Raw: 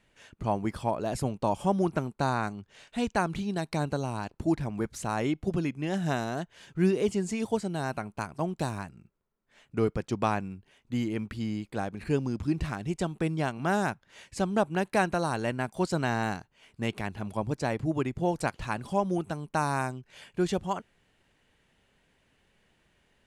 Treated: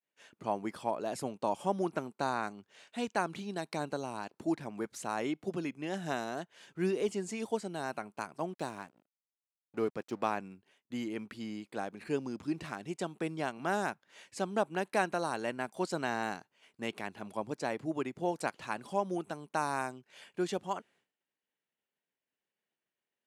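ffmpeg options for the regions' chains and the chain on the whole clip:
ffmpeg -i in.wav -filter_complex "[0:a]asettb=1/sr,asplit=3[link_01][link_02][link_03];[link_01]atrim=end=8.534[link_04];[link_02]atrim=start=8.53:end=10.37,asetpts=PTS-STARTPTS,afade=type=in:duration=0.004:curve=qsin,afade=type=out:start_time=1.836:duration=0.004:curve=qsin,highshelf=frequency=4400:gain=-4,aeval=exprs='sgn(val(0))*max(abs(val(0))-0.00335,0)':channel_layout=same[link_05];[link_03]atrim=start=10.366[link_06];[link_04][link_05]acrossfade=duration=0.004:curve1=hsin:curve2=qsin[link_07];[link_07][link_06]acrossfade=duration=0.004:curve1=qsin:curve2=hsin,agate=range=-33dB:threshold=-55dB:ratio=3:detection=peak,highpass=250,volume=-4dB" out.wav

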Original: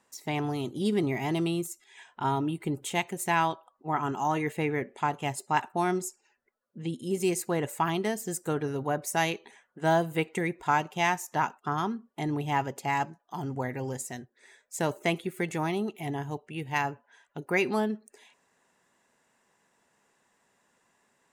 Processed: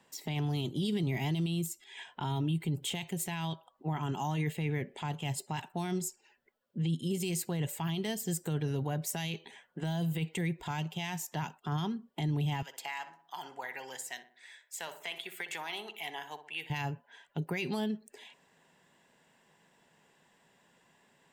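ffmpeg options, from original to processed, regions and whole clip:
ffmpeg -i in.wav -filter_complex "[0:a]asettb=1/sr,asplit=3[link_01][link_02][link_03];[link_01]atrim=end=12.624[link_04];[link_02]atrim=start=12.62:end=16.7,asetpts=PTS-STARTPTS,afade=type=in:duration=0.004:curve=qsin,afade=type=out:start_time=4.076:duration=0.004:curve=qsin,highpass=1100,acompressor=threshold=-36dB:ratio=6:attack=3.2:release=140:knee=1:detection=peak,asplit=2[link_05][link_06];[link_06]adelay=61,lowpass=frequency=1800:poles=1,volume=-10.5dB,asplit=2[link_07][link_08];[link_08]adelay=61,lowpass=frequency=1800:poles=1,volume=0.49,asplit=2[link_09][link_10];[link_10]adelay=61,lowpass=frequency=1800:poles=1,volume=0.49,asplit=2[link_11][link_12];[link_12]adelay=61,lowpass=frequency=1800:poles=1,volume=0.49,asplit=2[link_13][link_14];[link_14]adelay=61,lowpass=frequency=1800:poles=1,volume=0.49[link_15];[link_05][link_07][link_09][link_11][link_13][link_15]amix=inputs=6:normalize=0,atrim=end_sample=179928[link_16];[link_03]atrim=start=16.696[link_17];[link_04][link_16]acrossfade=duration=0.004:curve1=hsin:curve2=qsin[link_18];[link_18][link_17]acrossfade=duration=0.004:curve1=qsin:curve2=hsin,equalizer=frequency=160:width_type=o:width=0.33:gain=9,equalizer=frequency=1250:width_type=o:width=0.33:gain=-6,equalizer=frequency=3150:width_type=o:width=0.33:gain=6,equalizer=frequency=6300:width_type=o:width=0.33:gain=-6,equalizer=frequency=10000:width_type=o:width=0.33:gain=-9,acrossover=split=140|3000[link_19][link_20][link_21];[link_20]acompressor=threshold=-40dB:ratio=2.5[link_22];[link_19][link_22][link_21]amix=inputs=3:normalize=0,alimiter=level_in=4dB:limit=-24dB:level=0:latency=1:release=18,volume=-4dB,volume=3.5dB" out.wav

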